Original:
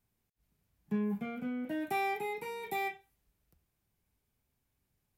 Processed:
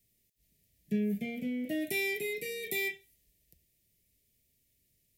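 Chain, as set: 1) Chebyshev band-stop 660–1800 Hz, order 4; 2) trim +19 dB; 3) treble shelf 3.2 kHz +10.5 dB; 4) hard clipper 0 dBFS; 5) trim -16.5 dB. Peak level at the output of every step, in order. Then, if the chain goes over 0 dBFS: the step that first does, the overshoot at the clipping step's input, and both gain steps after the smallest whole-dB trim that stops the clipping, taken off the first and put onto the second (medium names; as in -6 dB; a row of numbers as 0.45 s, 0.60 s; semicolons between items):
-24.0 dBFS, -5.0 dBFS, -4.0 dBFS, -4.0 dBFS, -20.5 dBFS; nothing clips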